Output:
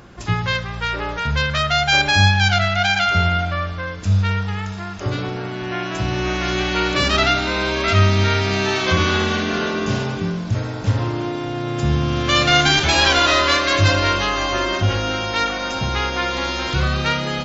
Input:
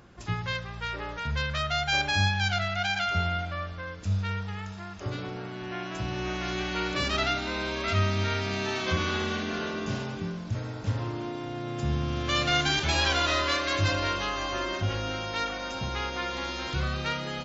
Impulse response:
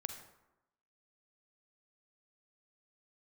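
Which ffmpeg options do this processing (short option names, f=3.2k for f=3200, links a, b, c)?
-filter_complex "[0:a]bandreject=f=78.6:t=h:w=4,bandreject=f=157.2:t=h:w=4,bandreject=f=235.8:t=h:w=4,asplit=2[a][b];[1:a]atrim=start_sample=2205[c];[b][c]afir=irnorm=-1:irlink=0,volume=-5.5dB[d];[a][d]amix=inputs=2:normalize=0,volume=7.5dB"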